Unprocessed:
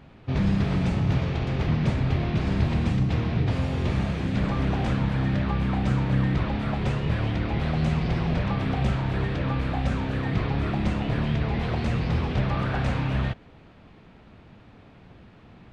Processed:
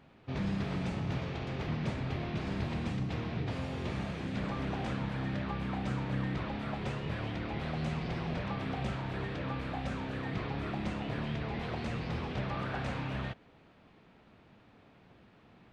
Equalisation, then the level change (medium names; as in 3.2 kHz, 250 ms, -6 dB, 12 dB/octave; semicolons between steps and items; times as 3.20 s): bass shelf 120 Hz -10.5 dB; -7.0 dB